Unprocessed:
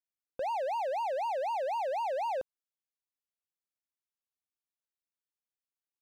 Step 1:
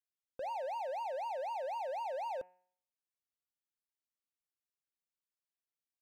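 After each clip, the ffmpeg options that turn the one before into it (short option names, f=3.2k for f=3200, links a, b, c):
-af "bandreject=f=181.4:t=h:w=4,bandreject=f=362.8:t=h:w=4,bandreject=f=544.2:t=h:w=4,bandreject=f=725.6:t=h:w=4,bandreject=f=907:t=h:w=4,bandreject=f=1.0884k:t=h:w=4,bandreject=f=1.2698k:t=h:w=4,bandreject=f=1.4512k:t=h:w=4,bandreject=f=1.6326k:t=h:w=4,bandreject=f=1.814k:t=h:w=4,bandreject=f=1.9954k:t=h:w=4,bandreject=f=2.1768k:t=h:w=4,bandreject=f=2.3582k:t=h:w=4,bandreject=f=2.5396k:t=h:w=4,bandreject=f=2.721k:t=h:w=4,bandreject=f=2.9024k:t=h:w=4,volume=-6dB"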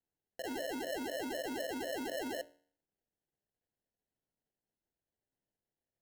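-af "acrusher=samples=37:mix=1:aa=0.000001,bandreject=f=60:t=h:w=6,bandreject=f=120:t=h:w=6,bandreject=f=180:t=h:w=6,bandreject=f=240:t=h:w=6,bandreject=f=300:t=h:w=6,bandreject=f=360:t=h:w=6,bandreject=f=420:t=h:w=6,bandreject=f=480:t=h:w=6,bandreject=f=540:t=h:w=6,bandreject=f=600:t=h:w=6"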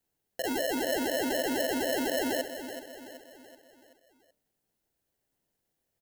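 -filter_complex "[0:a]crystalizer=i=0.5:c=0,asplit=2[a][b];[b]aecho=0:1:379|758|1137|1516|1895:0.299|0.143|0.0688|0.033|0.0158[c];[a][c]amix=inputs=2:normalize=0,volume=8.5dB"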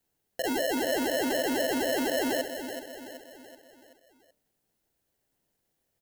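-af "asoftclip=type=tanh:threshold=-23dB,volume=3dB"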